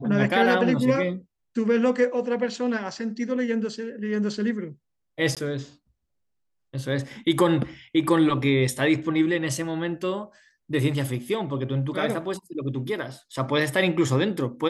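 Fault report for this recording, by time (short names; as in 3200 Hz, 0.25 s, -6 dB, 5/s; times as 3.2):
5.35–5.37 gap 17 ms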